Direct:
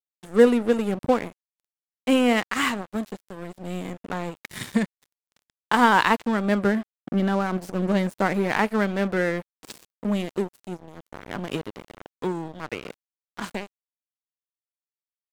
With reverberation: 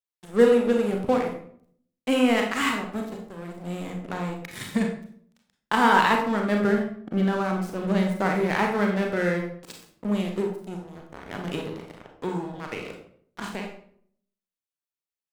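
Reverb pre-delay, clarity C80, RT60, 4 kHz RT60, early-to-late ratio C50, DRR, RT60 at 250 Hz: 31 ms, 9.0 dB, 0.60 s, 0.45 s, 5.0 dB, 1.5 dB, 0.75 s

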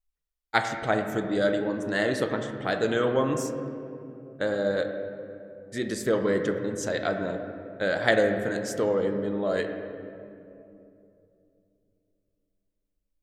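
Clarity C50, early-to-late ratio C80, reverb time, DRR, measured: 6.5 dB, 7.5 dB, 2.8 s, 5.0 dB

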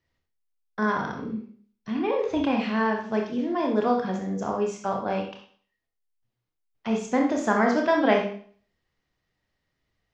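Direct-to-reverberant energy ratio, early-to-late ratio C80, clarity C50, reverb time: 0.5 dB, 9.5 dB, 4.5 dB, 0.50 s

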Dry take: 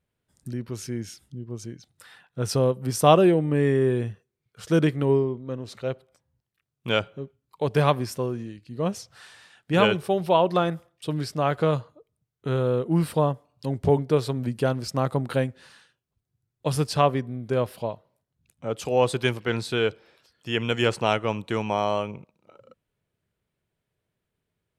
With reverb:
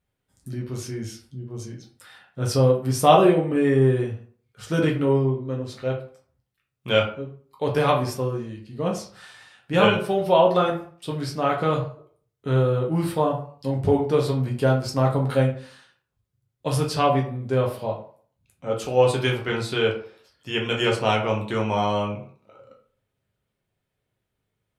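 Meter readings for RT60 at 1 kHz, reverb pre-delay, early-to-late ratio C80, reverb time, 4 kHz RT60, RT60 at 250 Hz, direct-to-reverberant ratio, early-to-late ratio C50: 0.50 s, 6 ms, 13.0 dB, 0.45 s, 0.30 s, 0.45 s, −1.5 dB, 8.0 dB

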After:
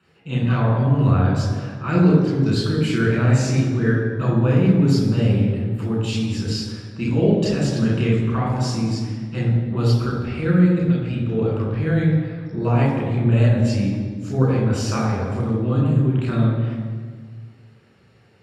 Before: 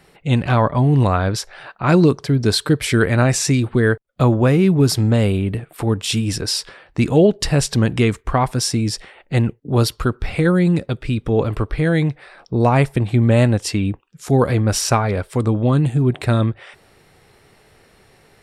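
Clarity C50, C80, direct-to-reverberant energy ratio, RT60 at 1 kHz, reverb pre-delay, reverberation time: 1.0 dB, 3.5 dB, −4.5 dB, 1.5 s, 3 ms, 1.6 s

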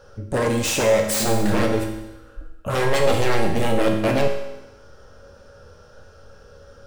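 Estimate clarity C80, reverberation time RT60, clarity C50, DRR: 7.5 dB, 1.0 s, 5.5 dB, 1.0 dB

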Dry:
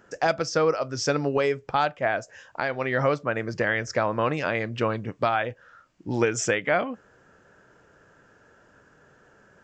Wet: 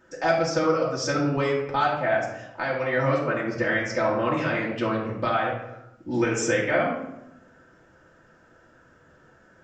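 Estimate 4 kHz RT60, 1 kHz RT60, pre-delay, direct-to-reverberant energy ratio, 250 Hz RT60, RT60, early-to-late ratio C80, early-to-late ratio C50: 0.55 s, 0.85 s, 3 ms, −6.0 dB, 1.2 s, 0.90 s, 7.0 dB, 3.5 dB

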